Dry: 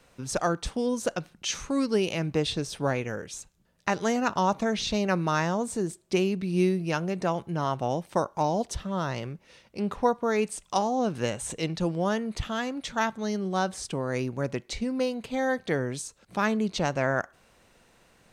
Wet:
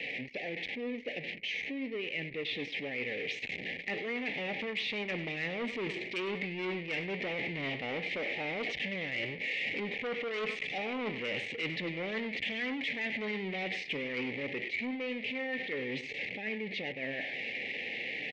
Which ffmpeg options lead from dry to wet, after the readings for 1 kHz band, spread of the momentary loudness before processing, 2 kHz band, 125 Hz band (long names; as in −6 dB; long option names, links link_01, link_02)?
−16.0 dB, 7 LU, +1.5 dB, −14.0 dB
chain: -af "aeval=exprs='val(0)+0.5*0.0708*sgn(val(0))':channel_layout=same,flanger=delay=6.7:depth=3.9:regen=76:speed=0.93:shape=sinusoidal,asuperstop=centerf=1200:order=12:qfactor=1.2,highpass=140,equalizer=frequency=260:width_type=q:width=4:gain=7,equalizer=frequency=450:width_type=q:width=4:gain=6,equalizer=frequency=690:width_type=q:width=4:gain=-9,equalizer=frequency=2200:width_type=q:width=4:gain=8,lowpass=frequency=2800:width=0.5412,lowpass=frequency=2800:width=1.3066,dynaudnorm=framelen=500:gausssize=17:maxgain=14dB,asoftclip=type=tanh:threshold=-11dB,tiltshelf=frequency=800:gain=-9.5,aecho=1:1:99|198|297:0.178|0.0587|0.0194,areverse,acompressor=threshold=-28dB:ratio=5,areverse,anlmdn=2.51,volume=-5.5dB"